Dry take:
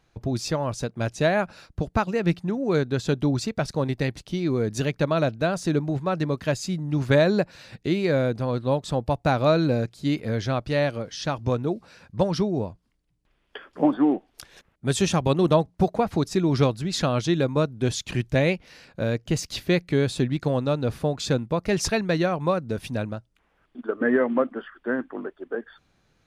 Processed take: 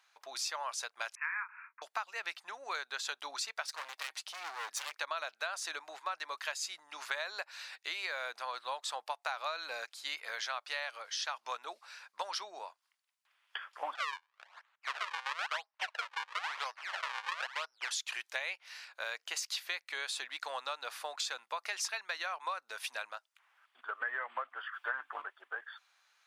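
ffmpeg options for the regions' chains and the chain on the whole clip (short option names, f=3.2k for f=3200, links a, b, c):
-filter_complex "[0:a]asettb=1/sr,asplit=3[a][b][c];[a]atrim=end=1.154[d];[b]atrim=start=1.15:end=1.82,asetpts=PTS-STARTPTS,afade=t=in:d=0.004:c=qsin,afade=t=out:st=0.666:d=0.004:c=qsin,asuperpass=centerf=1500:order=20:qfactor=0.96,asplit=2[e][f];[f]adelay=28,volume=-7.5dB[g];[e][g]amix=inputs=2:normalize=0,atrim=end_sample=29547[h];[c]atrim=start=1.816[i];[d][h]acrossfade=d=0.004:c1=hsin:c2=qsin[j];[j][i]acrossfade=d=0.004:c1=qsin:c2=hsin,asettb=1/sr,asplit=3[k][l][m];[k]atrim=end=3.684[n];[l]atrim=start=3.68:end=4.95,asetpts=PTS-STARTPTS,afade=t=in:d=0.004:c=qsin,afade=t=out:st=1.266:d=0.004:c=qsin,aecho=1:1:6.4:0.59,atrim=end_sample=56007,volume=29.5dB,asoftclip=hard,volume=-29.5dB[o];[m]atrim=start=4.946[p];[n][o]acrossfade=d=0.004:c1=hsin:c2=qsin[q];[q][p]acrossfade=d=0.004:c1=qsin:c2=hsin,asettb=1/sr,asplit=3[r][s][t];[r]atrim=end=13.954[u];[s]atrim=start=13.95:end=17.91,asetpts=PTS-STARTPTS,afade=t=in:d=0.004:c=qsin,afade=t=out:st=3.956:d=0.004:c=qsin,acrusher=samples=38:mix=1:aa=0.000001:lfo=1:lforange=60.8:lforate=1,highpass=550,lowpass=3.3k[v];[t]atrim=start=17.906[w];[u][v]acrossfade=d=0.004:c1=hsin:c2=qsin[x];[x][w]acrossfade=d=0.004:c1=qsin:c2=hsin,asettb=1/sr,asplit=3[y][z][aa];[y]atrim=end=24.734[ab];[z]atrim=start=24.73:end=25.22,asetpts=PTS-STARTPTS,afade=t=in:d=0.004:c=qsin,afade=t=out:st=0.486:d=0.004:c=qsin,bandreject=f=1.9k:w=14,aecho=1:1:6.8:0.55,atrim=end_sample=21609,acontrast=62[ac];[aa]atrim=start=25.216[ad];[ab][ac]acrossfade=d=0.004:c1=hsin:c2=qsin[ae];[ae][ad]acrossfade=d=0.004:c1=qsin:c2=hsin,highpass=f=940:w=0.5412,highpass=f=940:w=1.3066,acompressor=threshold=-35dB:ratio=6,volume=1dB"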